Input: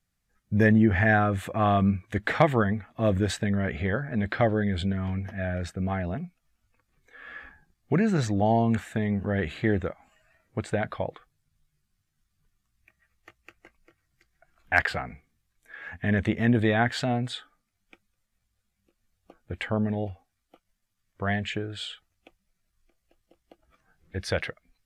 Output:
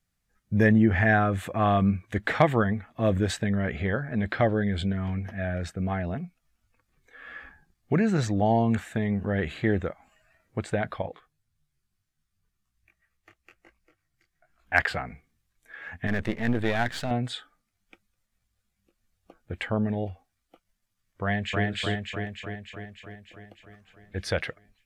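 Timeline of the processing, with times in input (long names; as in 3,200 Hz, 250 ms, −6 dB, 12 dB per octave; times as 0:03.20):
0:11.02–0:14.75: micro pitch shift up and down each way 38 cents
0:16.07–0:17.11: gain on one half-wave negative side −12 dB
0:21.23–0:21.65: delay throw 300 ms, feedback 65%, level −0.5 dB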